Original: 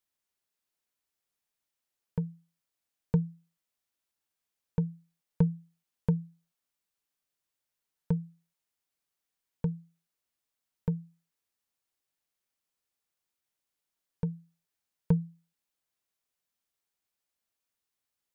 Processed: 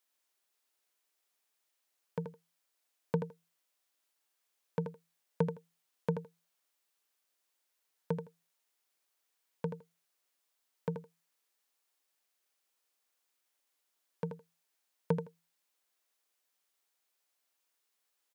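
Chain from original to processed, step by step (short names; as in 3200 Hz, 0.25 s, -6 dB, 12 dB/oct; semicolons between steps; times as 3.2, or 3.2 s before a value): HPF 360 Hz 12 dB/oct; feedback echo 81 ms, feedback 15%, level -7.5 dB; gain +5 dB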